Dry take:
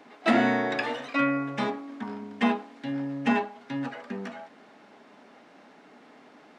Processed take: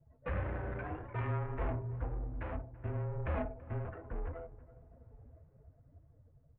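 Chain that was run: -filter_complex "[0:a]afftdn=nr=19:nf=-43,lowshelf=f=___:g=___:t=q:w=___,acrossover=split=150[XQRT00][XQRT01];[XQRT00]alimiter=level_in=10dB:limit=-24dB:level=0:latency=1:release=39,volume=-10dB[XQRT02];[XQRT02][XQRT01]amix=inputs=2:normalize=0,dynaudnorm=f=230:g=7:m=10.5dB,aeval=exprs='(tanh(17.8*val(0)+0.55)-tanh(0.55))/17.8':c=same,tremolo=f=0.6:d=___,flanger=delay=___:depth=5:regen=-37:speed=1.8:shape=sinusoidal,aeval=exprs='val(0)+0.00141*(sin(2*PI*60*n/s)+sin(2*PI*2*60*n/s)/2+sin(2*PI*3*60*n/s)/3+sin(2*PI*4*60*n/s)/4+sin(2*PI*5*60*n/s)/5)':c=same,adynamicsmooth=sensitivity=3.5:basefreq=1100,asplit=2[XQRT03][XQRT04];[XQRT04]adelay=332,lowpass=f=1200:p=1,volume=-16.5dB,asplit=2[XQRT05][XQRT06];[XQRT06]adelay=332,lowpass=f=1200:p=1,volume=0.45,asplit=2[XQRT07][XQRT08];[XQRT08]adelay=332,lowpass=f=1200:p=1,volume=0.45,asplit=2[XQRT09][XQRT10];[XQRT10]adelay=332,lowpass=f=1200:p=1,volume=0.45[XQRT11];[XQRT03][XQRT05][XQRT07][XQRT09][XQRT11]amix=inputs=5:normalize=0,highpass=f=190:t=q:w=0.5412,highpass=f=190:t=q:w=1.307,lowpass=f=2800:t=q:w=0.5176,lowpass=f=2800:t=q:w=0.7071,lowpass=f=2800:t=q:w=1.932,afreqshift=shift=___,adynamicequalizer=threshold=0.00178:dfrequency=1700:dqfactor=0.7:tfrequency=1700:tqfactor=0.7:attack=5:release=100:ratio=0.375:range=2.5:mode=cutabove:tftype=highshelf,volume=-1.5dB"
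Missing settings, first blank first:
240, 12.5, 1.5, 0.35, 5.6, -160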